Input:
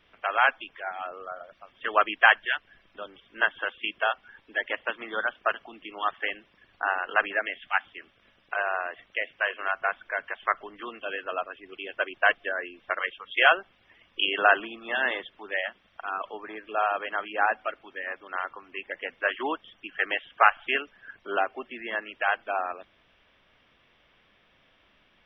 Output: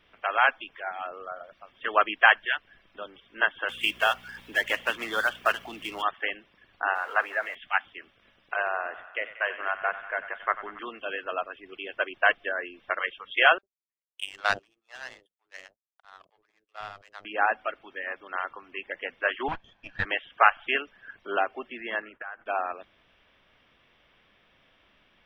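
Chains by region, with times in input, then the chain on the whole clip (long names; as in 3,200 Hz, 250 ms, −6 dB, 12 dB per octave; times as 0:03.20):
0:03.68–0:06.01: mu-law and A-law mismatch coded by mu + high-shelf EQ 3,200 Hz +10.5 dB + hum with harmonics 60 Hz, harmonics 4, −58 dBFS 0 dB per octave
0:06.95–0:07.55: converter with a step at zero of −34 dBFS + high-pass filter 110 Hz 24 dB per octave + three-way crossover with the lows and the highs turned down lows −21 dB, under 510 Hz, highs −18 dB, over 2,100 Hz
0:08.67–0:10.79: low-pass filter 2,500 Hz 6 dB per octave + downward expander −55 dBFS + feedback echo with a high-pass in the loop 93 ms, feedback 81%, high-pass 630 Hz, level −13 dB
0:13.58–0:17.25: low-shelf EQ 260 Hz −9 dB + power curve on the samples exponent 2 + multiband delay without the direct sound highs, lows 50 ms, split 490 Hz
0:19.48–0:20.05: lower of the sound and its delayed copy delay 1.2 ms + low-pass filter 2,400 Hz
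0:22.02–0:22.46: downward expander −50 dBFS + downward compressor 16 to 1, threshold −36 dBFS + drawn EQ curve 870 Hz 0 dB, 1,500 Hz +6 dB, 4,100 Hz −20 dB
whole clip: no processing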